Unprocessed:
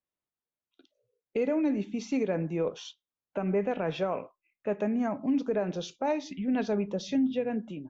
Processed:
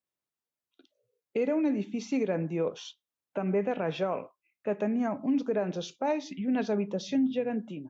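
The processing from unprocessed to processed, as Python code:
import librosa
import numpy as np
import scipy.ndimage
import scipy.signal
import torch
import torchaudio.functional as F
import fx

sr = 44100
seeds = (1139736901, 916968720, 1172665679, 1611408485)

y = scipy.signal.sosfilt(scipy.signal.butter(2, 85.0, 'highpass', fs=sr, output='sos'), x)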